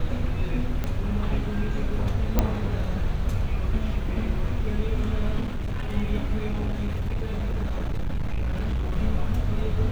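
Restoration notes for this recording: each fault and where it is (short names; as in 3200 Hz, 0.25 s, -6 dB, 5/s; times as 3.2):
0.84 pop -15 dBFS
2.39 pop -7 dBFS
5.41–5.94 clipped -24.5 dBFS
6.48–8.98 clipped -22.5 dBFS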